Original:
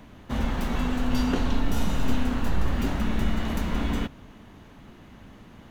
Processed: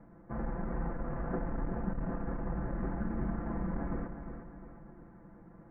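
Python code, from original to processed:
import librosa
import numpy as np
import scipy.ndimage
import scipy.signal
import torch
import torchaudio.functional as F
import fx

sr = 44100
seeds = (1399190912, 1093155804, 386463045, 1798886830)

y = fx.lower_of_two(x, sr, delay_ms=0.34)
y = scipy.signal.sosfilt(scipy.signal.butter(8, 1700.0, 'lowpass', fs=sr, output='sos'), y)
y = fx.low_shelf(y, sr, hz=120.0, db=-4.5)
y = y + 0.85 * np.pad(y, (int(5.9 * sr / 1000.0), 0))[:len(y)]
y = fx.echo_feedback(y, sr, ms=358, feedback_pct=44, wet_db=-9)
y = fx.transformer_sat(y, sr, knee_hz=58.0)
y = y * librosa.db_to_amplitude(-7.0)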